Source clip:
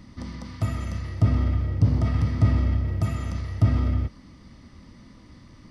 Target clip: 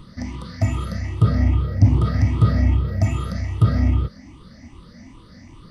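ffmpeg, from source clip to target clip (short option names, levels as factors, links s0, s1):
-af "afftfilt=real='re*pow(10,15/40*sin(2*PI*(0.65*log(max(b,1)*sr/1024/100)/log(2)-(2.5)*(pts-256)/sr)))':imag='im*pow(10,15/40*sin(2*PI*(0.65*log(max(b,1)*sr/1024/100)/log(2)-(2.5)*(pts-256)/sr)))':win_size=1024:overlap=0.75,volume=1.33"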